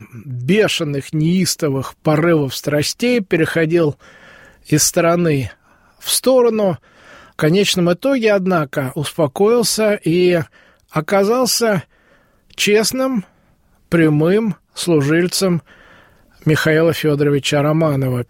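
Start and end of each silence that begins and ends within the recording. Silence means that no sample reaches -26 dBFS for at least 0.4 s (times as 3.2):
3.92–4.7
5.51–6.04
6.76–7.39
10.43–10.94
11.81–12.53
13.2–13.92
15.59–16.46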